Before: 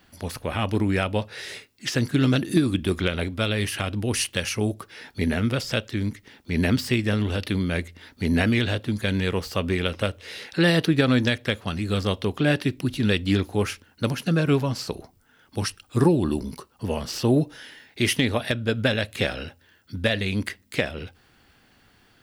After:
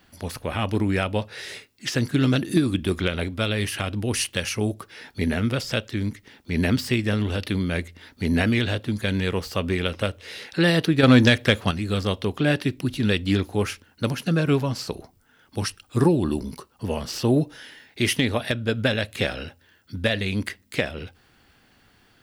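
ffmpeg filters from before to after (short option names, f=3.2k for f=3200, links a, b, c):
-filter_complex "[0:a]asettb=1/sr,asplit=3[a][b][c];[a]atrim=end=11.034[d];[b]atrim=start=11.03:end=11.71,asetpts=PTS-STARTPTS,afade=t=in:d=0.004:c=qsin,afade=t=out:st=0.676:d=0.004:c=qsin,acontrast=75[e];[c]atrim=start=11.706[f];[d][e]acrossfade=d=0.004:c1=hsin:c2=qsin[g];[g][f]acrossfade=d=0.004:c1=qsin:c2=hsin"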